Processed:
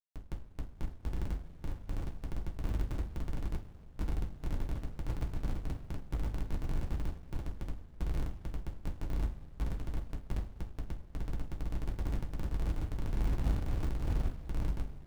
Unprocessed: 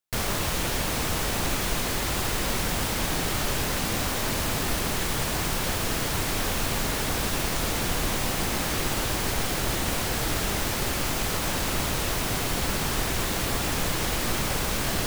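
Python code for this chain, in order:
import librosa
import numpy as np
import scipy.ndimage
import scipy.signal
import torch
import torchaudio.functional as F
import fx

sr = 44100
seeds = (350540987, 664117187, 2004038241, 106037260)

y = fx.fade_out_tail(x, sr, length_s=2.88)
y = fx.high_shelf(y, sr, hz=10000.0, db=11.5)
y = fx.over_compress(y, sr, threshold_db=-33.0, ratio=-1.0)
y = fx.comb_fb(y, sr, f0_hz=200.0, decay_s=1.2, harmonics='all', damping=0.0, mix_pct=50)
y = fx.filter_lfo_notch(y, sr, shape='saw_down', hz=1.5, low_hz=410.0, high_hz=3100.0, q=1.8)
y = scipy.signal.sosfilt(scipy.signal.cheby1(3, 1.0, [300.0, 770.0], 'bandstop', fs=sr, output='sos'), y)
y = fx.spec_topn(y, sr, count=4)
y = fx.granulator(y, sr, seeds[0], grain_ms=153.0, per_s=13.0, spray_ms=100.0, spread_st=0)
y = fx.schmitt(y, sr, flips_db=-46.0)
y = fx.room_flutter(y, sr, wall_m=7.1, rt60_s=0.21)
y = fx.rev_double_slope(y, sr, seeds[1], early_s=0.25, late_s=2.7, knee_db=-19, drr_db=-6.5)
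y = fx.running_max(y, sr, window=65)
y = y * 10.0 ** (12.0 / 20.0)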